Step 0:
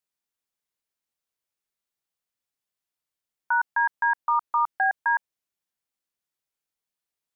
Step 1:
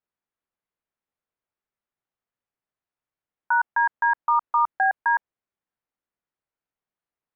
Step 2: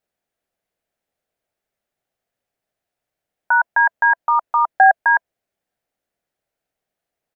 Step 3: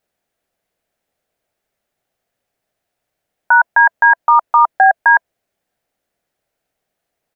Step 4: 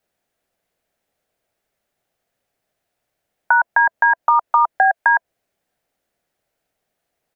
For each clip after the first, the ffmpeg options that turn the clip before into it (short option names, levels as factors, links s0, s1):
-af "lowpass=1800,volume=1.41"
-af "firequalizer=gain_entry='entry(330,0);entry(670,7);entry(1000,-7);entry(1600,0)':delay=0.05:min_phase=1,volume=2.66"
-af "alimiter=level_in=2.37:limit=0.891:release=50:level=0:latency=1,volume=0.891"
-filter_complex "[0:a]acrossover=split=350|790[s0][s1][s2];[s0]acompressor=threshold=0.00355:ratio=4[s3];[s1]acompressor=threshold=0.0794:ratio=4[s4];[s2]acompressor=threshold=0.2:ratio=4[s5];[s3][s4][s5]amix=inputs=3:normalize=0"